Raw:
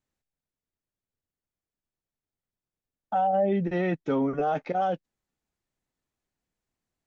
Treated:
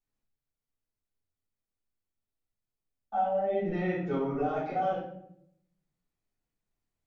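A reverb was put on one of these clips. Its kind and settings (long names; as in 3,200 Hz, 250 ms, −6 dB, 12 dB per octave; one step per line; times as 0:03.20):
rectangular room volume 140 cubic metres, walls mixed, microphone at 3.6 metres
level −15.5 dB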